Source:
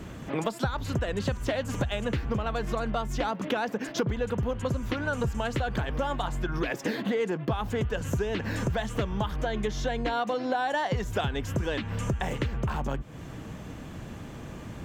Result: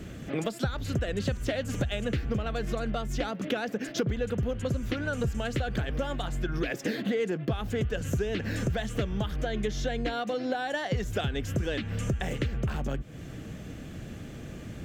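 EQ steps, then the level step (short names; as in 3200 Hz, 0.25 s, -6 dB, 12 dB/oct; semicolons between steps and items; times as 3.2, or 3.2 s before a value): bell 970 Hz -12.5 dB 0.56 oct; 0.0 dB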